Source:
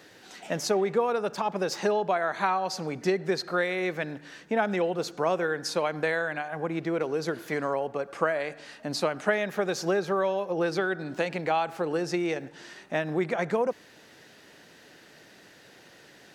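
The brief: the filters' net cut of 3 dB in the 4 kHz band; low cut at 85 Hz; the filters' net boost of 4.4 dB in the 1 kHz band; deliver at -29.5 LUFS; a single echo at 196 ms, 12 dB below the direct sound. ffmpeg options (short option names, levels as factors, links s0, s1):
-af "highpass=85,equalizer=f=1000:t=o:g=6,equalizer=f=4000:t=o:g=-4,aecho=1:1:196:0.251,volume=0.708"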